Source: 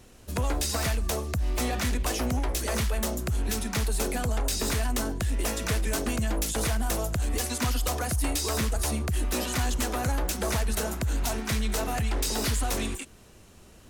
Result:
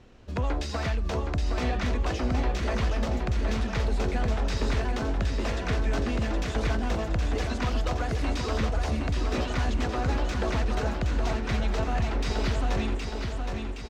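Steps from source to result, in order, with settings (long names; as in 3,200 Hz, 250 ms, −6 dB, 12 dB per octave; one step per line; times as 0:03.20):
high-frequency loss of the air 180 metres
on a send: repeating echo 768 ms, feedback 54%, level −5 dB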